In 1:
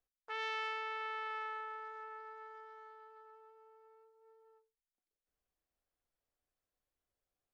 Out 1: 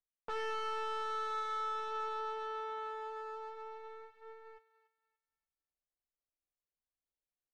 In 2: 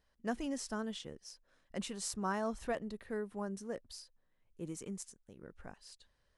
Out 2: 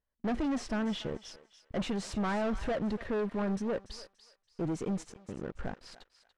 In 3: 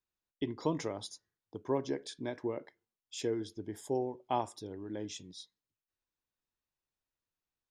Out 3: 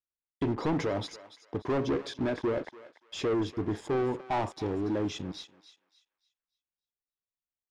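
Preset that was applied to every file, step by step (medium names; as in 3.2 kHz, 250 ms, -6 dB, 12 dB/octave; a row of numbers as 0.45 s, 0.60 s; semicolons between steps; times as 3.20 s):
treble shelf 4.9 kHz -2.5 dB; waveshaping leveller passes 5; in parallel at -6 dB: hard clipper -36 dBFS; on the sum: tape spacing loss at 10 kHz 21 dB; thinning echo 288 ms, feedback 33%, high-pass 1 kHz, level -13 dB; trim -4.5 dB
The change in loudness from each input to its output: +2.5 LU, +6.0 LU, +6.0 LU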